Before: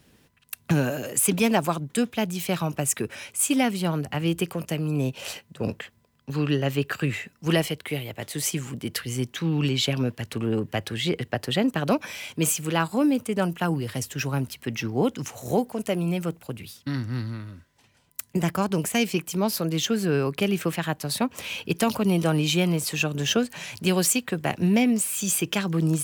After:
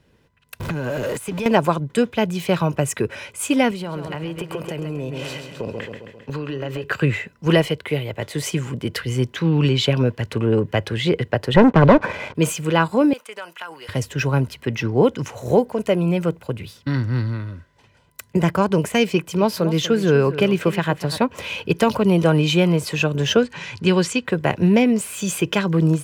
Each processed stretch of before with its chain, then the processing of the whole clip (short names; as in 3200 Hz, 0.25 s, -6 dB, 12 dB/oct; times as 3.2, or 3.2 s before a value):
0.6–1.46 zero-crossing step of -28.5 dBFS + compressor, threshold -29 dBFS
3.71–6.84 bell 63 Hz -6.5 dB 2.8 oct + feedback echo 0.133 s, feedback 58%, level -10 dB + compressor 12:1, threshold -30 dBFS
11.54–12.35 LPF 1400 Hz + sample leveller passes 3
13.13–13.89 HPF 1100 Hz + compressor, threshold -34 dBFS
19.12–21.18 echo 0.243 s -13.5 dB + mismatched tape noise reduction decoder only
23.43–24.25 LPF 7000 Hz + bell 640 Hz -12.5 dB 0.31 oct
whole clip: AGC gain up to 8 dB; LPF 2200 Hz 6 dB/oct; comb 2 ms, depth 33%